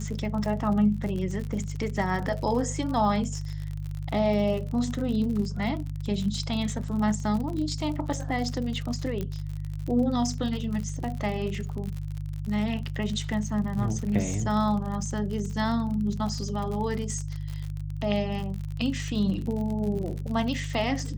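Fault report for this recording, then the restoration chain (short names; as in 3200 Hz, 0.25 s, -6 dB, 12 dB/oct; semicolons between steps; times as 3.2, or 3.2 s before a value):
crackle 52/s -32 dBFS
hum 50 Hz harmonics 3 -33 dBFS
9.21 pop -19 dBFS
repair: de-click; de-hum 50 Hz, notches 3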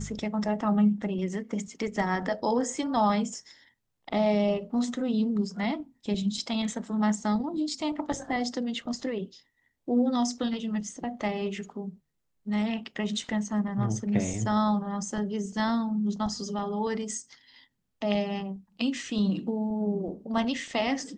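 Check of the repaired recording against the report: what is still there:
9.21 pop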